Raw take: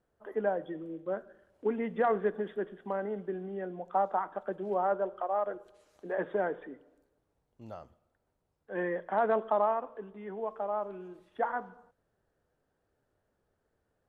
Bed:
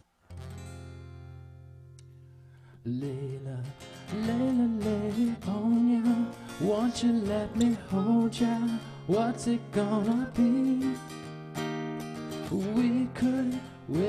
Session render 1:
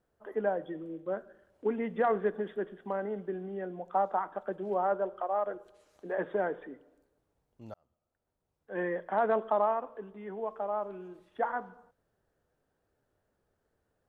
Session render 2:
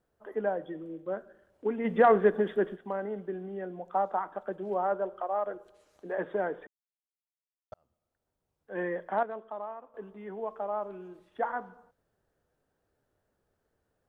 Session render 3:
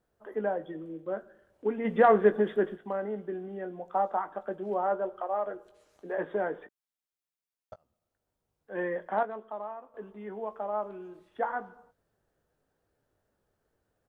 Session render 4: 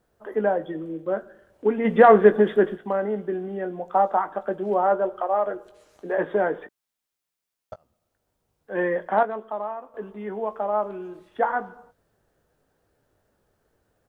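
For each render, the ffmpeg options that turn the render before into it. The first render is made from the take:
ffmpeg -i in.wav -filter_complex "[0:a]asplit=2[link_01][link_02];[link_01]atrim=end=7.74,asetpts=PTS-STARTPTS,afade=type=out:start_time=7.736:duration=0.004:curve=hsin[link_03];[link_02]atrim=start=7.74,asetpts=PTS-STARTPTS,afade=type=in:duration=1.07[link_04];[link_03][link_04]concat=n=2:v=0:a=1" out.wav
ffmpeg -i in.wav -filter_complex "[0:a]asplit=3[link_01][link_02][link_03];[link_01]afade=type=out:start_time=1.84:duration=0.02[link_04];[link_02]acontrast=82,afade=type=in:start_time=1.84:duration=0.02,afade=type=out:start_time=2.75:duration=0.02[link_05];[link_03]afade=type=in:start_time=2.75:duration=0.02[link_06];[link_04][link_05][link_06]amix=inputs=3:normalize=0,asplit=5[link_07][link_08][link_09][link_10][link_11];[link_07]atrim=end=6.67,asetpts=PTS-STARTPTS,afade=type=out:start_time=6.666:duration=0.004:curve=hsin[link_12];[link_08]atrim=start=6.67:end=7.72,asetpts=PTS-STARTPTS,volume=0[link_13];[link_09]atrim=start=7.72:end=9.232,asetpts=PTS-STARTPTS,afade=type=in:duration=0.004:curve=hsin[link_14];[link_10]atrim=start=9.228:end=9.942,asetpts=PTS-STARTPTS,volume=-11.5dB[link_15];[link_11]atrim=start=9.938[link_16];[link_12][link_13][link_14]concat=n=3:v=0:a=1[link_17];[link_17][link_15]acrossfade=duration=0.004:curve1=hsin:curve2=hsin[link_18];[link_18][link_16]acrossfade=duration=0.004:curve1=hsin:curve2=hsin" out.wav
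ffmpeg -i in.wav -filter_complex "[0:a]asplit=2[link_01][link_02];[link_02]adelay=19,volume=-10.5dB[link_03];[link_01][link_03]amix=inputs=2:normalize=0" out.wav
ffmpeg -i in.wav -af "volume=8dB,alimiter=limit=-3dB:level=0:latency=1" out.wav

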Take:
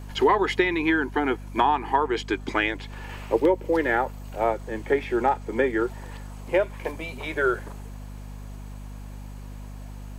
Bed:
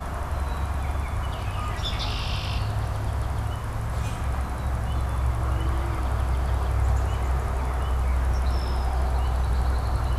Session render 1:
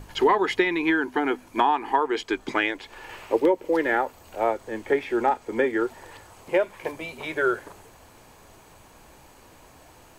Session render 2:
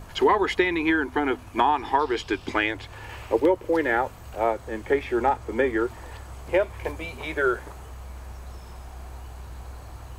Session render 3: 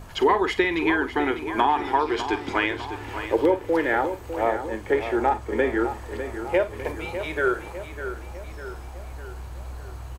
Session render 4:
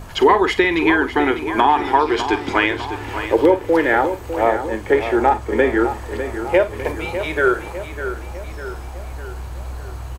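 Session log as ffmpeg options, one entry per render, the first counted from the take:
ffmpeg -i in.wav -af "bandreject=frequency=50:width_type=h:width=6,bandreject=frequency=100:width_type=h:width=6,bandreject=frequency=150:width_type=h:width=6,bandreject=frequency=200:width_type=h:width=6,bandreject=frequency=250:width_type=h:width=6" out.wav
ffmpeg -i in.wav -i bed.wav -filter_complex "[1:a]volume=-16dB[link_01];[0:a][link_01]amix=inputs=2:normalize=0" out.wav
ffmpeg -i in.wav -filter_complex "[0:a]asplit=2[link_01][link_02];[link_02]adelay=48,volume=-13dB[link_03];[link_01][link_03]amix=inputs=2:normalize=0,asplit=2[link_04][link_05];[link_05]adelay=602,lowpass=frequency=4700:poles=1,volume=-10dB,asplit=2[link_06][link_07];[link_07]adelay=602,lowpass=frequency=4700:poles=1,volume=0.55,asplit=2[link_08][link_09];[link_09]adelay=602,lowpass=frequency=4700:poles=1,volume=0.55,asplit=2[link_10][link_11];[link_11]adelay=602,lowpass=frequency=4700:poles=1,volume=0.55,asplit=2[link_12][link_13];[link_13]adelay=602,lowpass=frequency=4700:poles=1,volume=0.55,asplit=2[link_14][link_15];[link_15]adelay=602,lowpass=frequency=4700:poles=1,volume=0.55[link_16];[link_04][link_06][link_08][link_10][link_12][link_14][link_16]amix=inputs=7:normalize=0" out.wav
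ffmpeg -i in.wav -af "volume=6.5dB,alimiter=limit=-2dB:level=0:latency=1" out.wav

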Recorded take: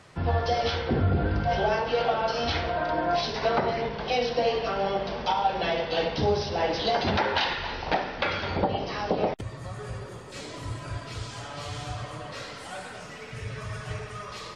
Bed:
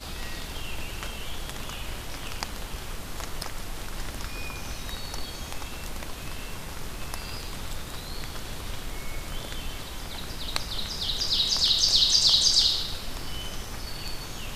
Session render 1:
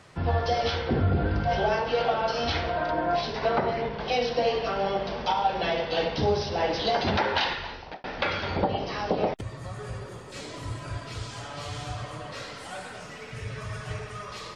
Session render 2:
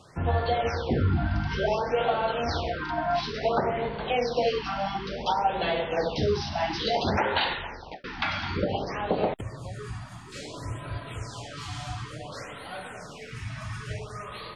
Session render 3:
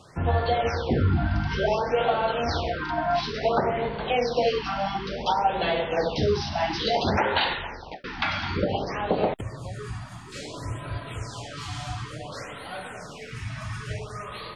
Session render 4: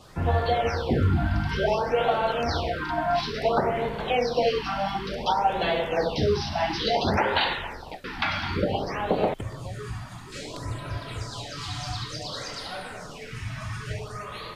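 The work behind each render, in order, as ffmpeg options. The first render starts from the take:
ffmpeg -i in.wav -filter_complex "[0:a]asettb=1/sr,asplit=3[link_01][link_02][link_03];[link_01]atrim=end=2.914[link_04];[link_02]atrim=start=2.91:end=4,asetpts=PTS-STARTPTS,afade=type=in:duration=0.004:curve=qsin,afade=type=out:start_time=1.086:duration=0.004:curve=qsin,lowpass=frequency=3500:poles=1[link_05];[link_03]atrim=start=3.996[link_06];[link_04][link_05]acrossfade=duration=0.004:curve1=hsin:curve2=qsin[link_07];[link_07][link_06]acrossfade=duration=0.004:curve1=qsin:curve2=hsin,asplit=2[link_08][link_09];[link_08]atrim=end=8.04,asetpts=PTS-STARTPTS,afade=type=out:start_time=7.47:duration=0.57[link_10];[link_09]atrim=start=8.04,asetpts=PTS-STARTPTS,afade=type=in:duration=0.004:curve=hsin[link_11];[link_10][link_11]concat=n=2:v=0:a=1" out.wav
ffmpeg -i in.wav -af "afftfilt=real='re*(1-between(b*sr/1024,420*pow(6700/420,0.5+0.5*sin(2*PI*0.57*pts/sr))/1.41,420*pow(6700/420,0.5+0.5*sin(2*PI*0.57*pts/sr))*1.41))':imag='im*(1-between(b*sr/1024,420*pow(6700/420,0.5+0.5*sin(2*PI*0.57*pts/sr))/1.41,420*pow(6700/420,0.5+0.5*sin(2*PI*0.57*pts/sr))*1.41))':win_size=1024:overlap=0.75" out.wav
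ffmpeg -i in.wav -af "volume=2dB" out.wav
ffmpeg -i in.wav -i bed.wav -filter_complex "[1:a]volume=-18.5dB[link_01];[0:a][link_01]amix=inputs=2:normalize=0" out.wav

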